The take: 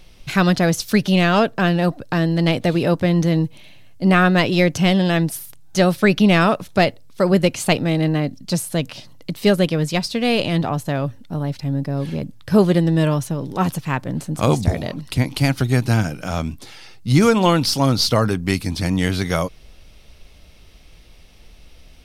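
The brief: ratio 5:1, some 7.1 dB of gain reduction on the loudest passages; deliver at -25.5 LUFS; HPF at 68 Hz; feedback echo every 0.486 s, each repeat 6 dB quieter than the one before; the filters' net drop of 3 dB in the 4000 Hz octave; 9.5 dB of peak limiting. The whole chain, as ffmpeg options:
-af "highpass=68,equalizer=f=4k:t=o:g=-4,acompressor=threshold=-18dB:ratio=5,alimiter=limit=-16.5dB:level=0:latency=1,aecho=1:1:486|972|1458|1944|2430|2916:0.501|0.251|0.125|0.0626|0.0313|0.0157,volume=-0.5dB"

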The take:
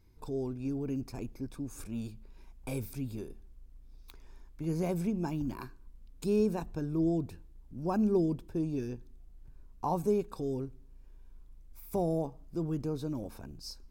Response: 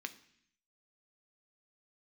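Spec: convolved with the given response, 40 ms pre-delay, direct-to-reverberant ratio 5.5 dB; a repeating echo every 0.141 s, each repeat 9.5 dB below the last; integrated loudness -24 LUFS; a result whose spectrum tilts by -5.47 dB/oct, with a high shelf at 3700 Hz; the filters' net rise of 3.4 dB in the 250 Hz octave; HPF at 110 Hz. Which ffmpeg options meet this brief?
-filter_complex "[0:a]highpass=110,equalizer=f=250:t=o:g=5,highshelf=f=3.7k:g=-7,aecho=1:1:141|282|423|564:0.335|0.111|0.0365|0.012,asplit=2[a][b];[1:a]atrim=start_sample=2205,adelay=40[c];[b][c]afir=irnorm=-1:irlink=0,volume=-4.5dB[d];[a][d]amix=inputs=2:normalize=0,volume=7dB"

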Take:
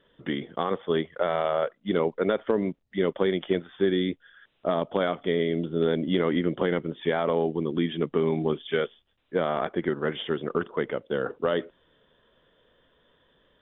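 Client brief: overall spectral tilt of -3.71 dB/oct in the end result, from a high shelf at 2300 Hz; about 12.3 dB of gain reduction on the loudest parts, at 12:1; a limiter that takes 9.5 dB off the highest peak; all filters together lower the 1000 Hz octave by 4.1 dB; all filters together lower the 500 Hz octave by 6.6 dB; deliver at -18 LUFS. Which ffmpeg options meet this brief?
-af "equalizer=f=500:t=o:g=-8,equalizer=f=1k:t=o:g=-5,highshelf=f=2.3k:g=8,acompressor=threshold=-35dB:ratio=12,volume=26dB,alimiter=limit=-5.5dB:level=0:latency=1"

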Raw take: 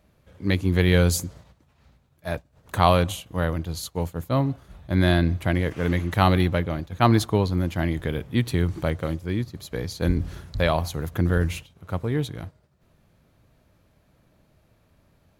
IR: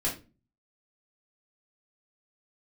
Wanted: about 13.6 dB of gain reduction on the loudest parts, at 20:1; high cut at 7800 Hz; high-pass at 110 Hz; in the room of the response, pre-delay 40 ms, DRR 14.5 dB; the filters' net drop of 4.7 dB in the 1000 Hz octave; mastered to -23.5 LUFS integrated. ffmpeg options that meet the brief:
-filter_complex "[0:a]highpass=110,lowpass=7.8k,equalizer=f=1k:t=o:g=-6.5,acompressor=threshold=-28dB:ratio=20,asplit=2[a][b];[1:a]atrim=start_sample=2205,adelay=40[c];[b][c]afir=irnorm=-1:irlink=0,volume=-21dB[d];[a][d]amix=inputs=2:normalize=0,volume=11.5dB"

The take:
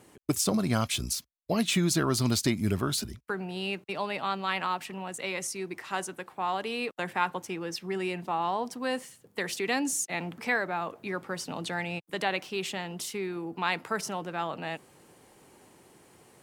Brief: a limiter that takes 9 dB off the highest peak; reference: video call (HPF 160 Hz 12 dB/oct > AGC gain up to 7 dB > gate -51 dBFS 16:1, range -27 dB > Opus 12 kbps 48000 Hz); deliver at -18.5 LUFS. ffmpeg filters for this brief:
-af "alimiter=limit=-22dB:level=0:latency=1,highpass=160,dynaudnorm=m=7dB,agate=range=-27dB:threshold=-51dB:ratio=16,volume=15.5dB" -ar 48000 -c:a libopus -b:a 12k

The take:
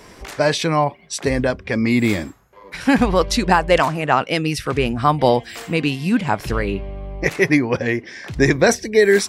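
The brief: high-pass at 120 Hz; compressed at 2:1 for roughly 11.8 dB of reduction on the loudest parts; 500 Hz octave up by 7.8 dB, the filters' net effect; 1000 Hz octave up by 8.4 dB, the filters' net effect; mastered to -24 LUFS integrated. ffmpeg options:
-af "highpass=120,equalizer=f=500:t=o:g=7.5,equalizer=f=1k:t=o:g=8,acompressor=threshold=-24dB:ratio=2,volume=-1.5dB"

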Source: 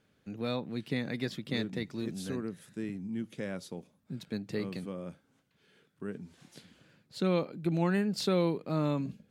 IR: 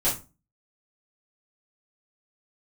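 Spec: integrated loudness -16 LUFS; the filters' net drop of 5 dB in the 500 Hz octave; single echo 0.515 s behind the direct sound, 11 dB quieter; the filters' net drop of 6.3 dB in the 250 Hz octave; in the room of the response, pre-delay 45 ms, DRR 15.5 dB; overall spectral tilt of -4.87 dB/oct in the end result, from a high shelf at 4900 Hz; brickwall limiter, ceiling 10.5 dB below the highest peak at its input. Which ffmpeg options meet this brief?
-filter_complex "[0:a]equalizer=f=250:t=o:g=-8.5,equalizer=f=500:t=o:g=-3.5,highshelf=f=4.9k:g=5,alimiter=level_in=5.5dB:limit=-24dB:level=0:latency=1,volume=-5.5dB,aecho=1:1:515:0.282,asplit=2[a][b];[1:a]atrim=start_sample=2205,adelay=45[c];[b][c]afir=irnorm=-1:irlink=0,volume=-26.5dB[d];[a][d]amix=inputs=2:normalize=0,volume=25.5dB"

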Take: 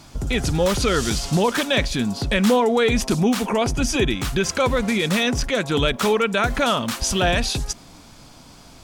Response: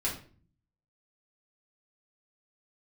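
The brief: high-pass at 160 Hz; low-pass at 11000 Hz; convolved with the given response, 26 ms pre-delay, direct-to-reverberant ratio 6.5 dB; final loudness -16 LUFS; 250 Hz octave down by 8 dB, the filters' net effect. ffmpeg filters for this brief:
-filter_complex "[0:a]highpass=160,lowpass=11k,equalizer=f=250:t=o:g=-9,asplit=2[a][b];[1:a]atrim=start_sample=2205,adelay=26[c];[b][c]afir=irnorm=-1:irlink=0,volume=-12dB[d];[a][d]amix=inputs=2:normalize=0,volume=6dB"

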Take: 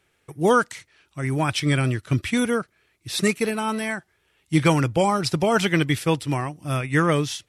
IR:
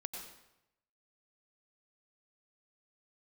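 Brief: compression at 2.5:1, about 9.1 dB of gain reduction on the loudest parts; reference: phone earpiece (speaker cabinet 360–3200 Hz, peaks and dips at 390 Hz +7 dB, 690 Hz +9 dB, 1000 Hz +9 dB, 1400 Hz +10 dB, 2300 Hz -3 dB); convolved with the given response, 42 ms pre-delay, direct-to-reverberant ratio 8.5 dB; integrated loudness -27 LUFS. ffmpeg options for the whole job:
-filter_complex "[0:a]acompressor=threshold=-28dB:ratio=2.5,asplit=2[a][b];[1:a]atrim=start_sample=2205,adelay=42[c];[b][c]afir=irnorm=-1:irlink=0,volume=-7.5dB[d];[a][d]amix=inputs=2:normalize=0,highpass=360,equalizer=f=390:t=q:w=4:g=7,equalizer=f=690:t=q:w=4:g=9,equalizer=f=1k:t=q:w=4:g=9,equalizer=f=1.4k:t=q:w=4:g=10,equalizer=f=2.3k:t=q:w=4:g=-3,lowpass=f=3.2k:w=0.5412,lowpass=f=3.2k:w=1.3066,volume=-0.5dB"

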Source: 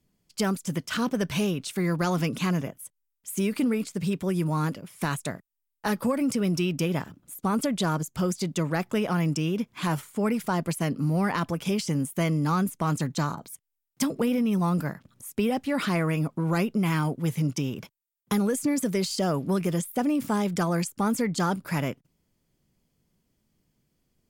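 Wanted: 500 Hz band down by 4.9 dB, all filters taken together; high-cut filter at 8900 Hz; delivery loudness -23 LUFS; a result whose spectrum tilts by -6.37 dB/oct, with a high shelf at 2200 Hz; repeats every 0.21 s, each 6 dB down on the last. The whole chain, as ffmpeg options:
-af "lowpass=8.9k,equalizer=f=500:t=o:g=-6,highshelf=f=2.2k:g=-7,aecho=1:1:210|420|630|840|1050|1260:0.501|0.251|0.125|0.0626|0.0313|0.0157,volume=5dB"

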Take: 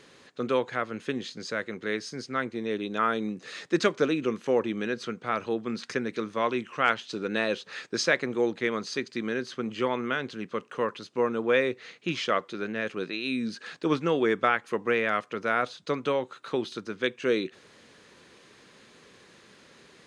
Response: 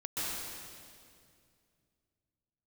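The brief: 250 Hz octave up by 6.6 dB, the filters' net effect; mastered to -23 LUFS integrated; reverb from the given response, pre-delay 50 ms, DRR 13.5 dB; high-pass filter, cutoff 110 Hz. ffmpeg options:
-filter_complex "[0:a]highpass=110,equalizer=f=250:t=o:g=8.5,asplit=2[a][b];[1:a]atrim=start_sample=2205,adelay=50[c];[b][c]afir=irnorm=-1:irlink=0,volume=-18.5dB[d];[a][d]amix=inputs=2:normalize=0,volume=3dB"

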